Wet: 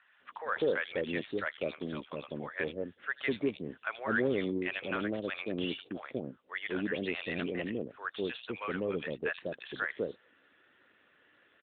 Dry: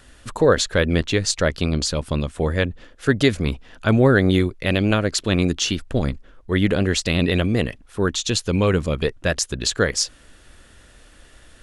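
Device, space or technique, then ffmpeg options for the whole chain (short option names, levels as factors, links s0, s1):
telephone: -filter_complex "[0:a]asettb=1/sr,asplit=3[s0][s1][s2];[s0]atrim=end=6.714[s3];[s1]atrim=start=6.71:end=7.65,asetpts=PTS-STARTPTS,afade=t=in:d=0.004:c=qsin,afade=t=out:st=0.936:d=0.004:c=qsin,lowpass=6000[s4];[s2]atrim=start=7.646[s5];[s3][s4]acrossfade=d=0.004:c1=hsin:c2=qsin[s6];[s6][s5]acrossfade=d=0.004:c1=qsin:c2=hsin,highpass=350,lowpass=3200,equalizer=f=630:w=0.62:g=-4,acrossover=split=710|3400[s7][s8][s9];[s9]adelay=80[s10];[s7]adelay=200[s11];[s11][s8][s10]amix=inputs=3:normalize=0,asoftclip=type=tanh:threshold=0.224,volume=0.501" -ar 8000 -c:a libopencore_amrnb -b:a 12200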